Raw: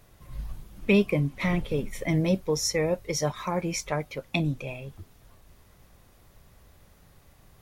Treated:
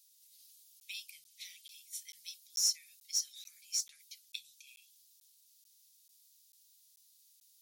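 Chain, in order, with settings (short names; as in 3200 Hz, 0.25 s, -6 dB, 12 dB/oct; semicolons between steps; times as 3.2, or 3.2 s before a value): inverse Chebyshev high-pass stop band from 970 Hz, stop band 70 dB; in parallel at -5 dB: hard clip -33.5 dBFS, distortion -6 dB; on the sum: crackling interface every 0.44 s, samples 512, zero, from 0.8; gain -2.5 dB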